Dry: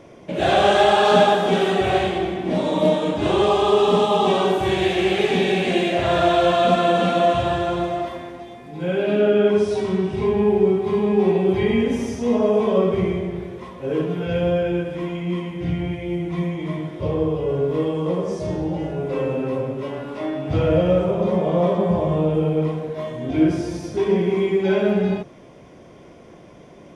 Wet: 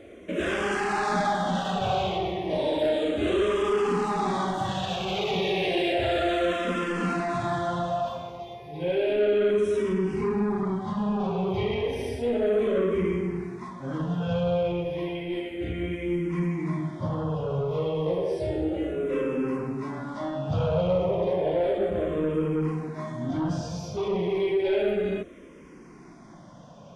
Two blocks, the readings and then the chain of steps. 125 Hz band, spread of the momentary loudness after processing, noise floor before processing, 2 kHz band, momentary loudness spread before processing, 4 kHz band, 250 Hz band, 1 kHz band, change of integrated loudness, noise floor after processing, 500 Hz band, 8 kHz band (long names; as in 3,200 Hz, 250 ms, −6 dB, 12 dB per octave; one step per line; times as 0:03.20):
−6.0 dB, 8 LU, −45 dBFS, −6.0 dB, 10 LU, −7.5 dB, −7.0 dB, −8.0 dB, −7.0 dB, −47 dBFS, −7.0 dB, can't be measured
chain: in parallel at −1 dB: brickwall limiter −15.5 dBFS, peak gain reduction 11.5 dB
on the sum: soft clipping −11.5 dBFS, distortion −15 dB
frequency shifter mixed with the dry sound −0.32 Hz
level −5 dB